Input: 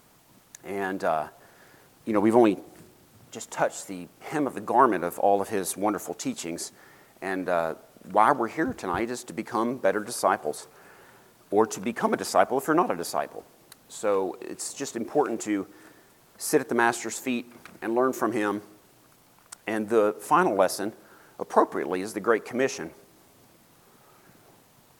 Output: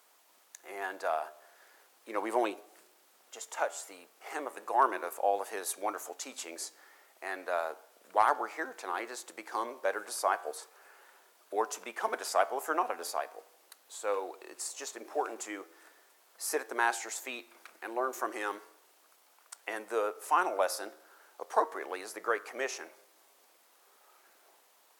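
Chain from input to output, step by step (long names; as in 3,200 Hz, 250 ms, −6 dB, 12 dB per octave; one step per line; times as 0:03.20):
Bessel high-pass filter 610 Hz, order 4
hard clipping −8.5 dBFS, distortion −37 dB
flanger 0.36 Hz, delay 9.1 ms, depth 4.2 ms, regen +89%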